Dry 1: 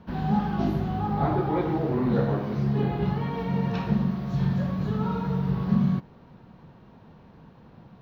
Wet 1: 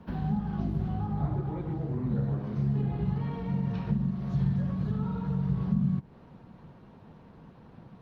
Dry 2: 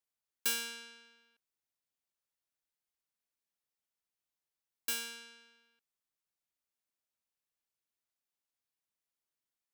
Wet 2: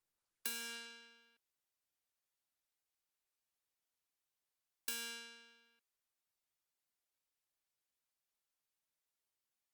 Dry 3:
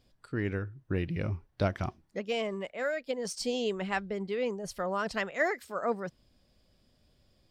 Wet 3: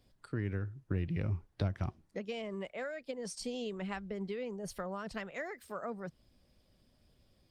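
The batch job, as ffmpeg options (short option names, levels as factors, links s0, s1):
-filter_complex "[0:a]acrossover=split=180[s0][s1];[s1]acompressor=threshold=0.0141:ratio=12[s2];[s0][s2]amix=inputs=2:normalize=0" -ar 48000 -c:a libopus -b:a 32k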